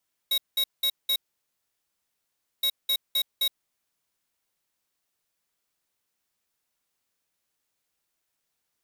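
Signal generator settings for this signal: beep pattern square 3810 Hz, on 0.07 s, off 0.19 s, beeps 4, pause 1.47 s, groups 2, -24 dBFS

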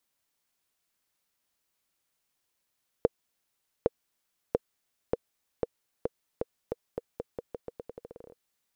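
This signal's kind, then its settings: bouncing ball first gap 0.81 s, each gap 0.85, 477 Hz, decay 29 ms -9 dBFS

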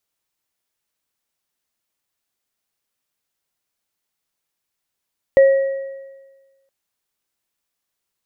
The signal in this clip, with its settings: sine partials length 1.32 s, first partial 543 Hz, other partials 1910 Hz, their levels -17 dB, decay 1.36 s, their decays 1.27 s, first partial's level -5.5 dB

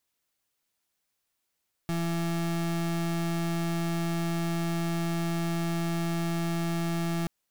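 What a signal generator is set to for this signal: pulse 168 Hz, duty 34% -29 dBFS 5.38 s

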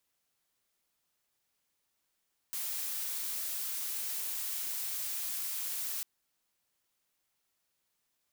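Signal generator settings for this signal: noise blue, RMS -36.5 dBFS 3.50 s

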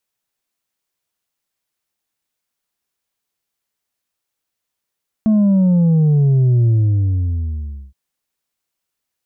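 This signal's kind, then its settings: sub drop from 220 Hz, over 2.67 s, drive 3.5 dB, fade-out 1.26 s, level -10.5 dB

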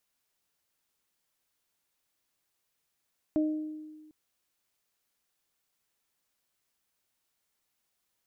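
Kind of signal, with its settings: additive tone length 0.75 s, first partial 308 Hz, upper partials -8.5 dB, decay 1.49 s, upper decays 0.67 s, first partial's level -22.5 dB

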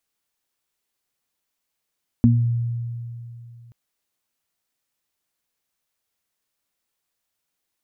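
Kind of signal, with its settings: additive tone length 1.48 s, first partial 118 Hz, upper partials 4.5 dB, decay 2.85 s, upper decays 0.33 s, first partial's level -13 dB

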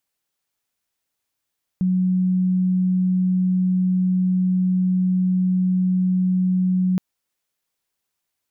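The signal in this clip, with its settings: tone sine 184 Hz -16 dBFS 5.17 s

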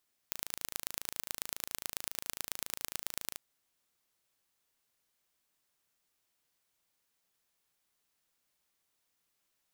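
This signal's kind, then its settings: pulse train 27.3/s, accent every 3, -6.5 dBFS 3.05 s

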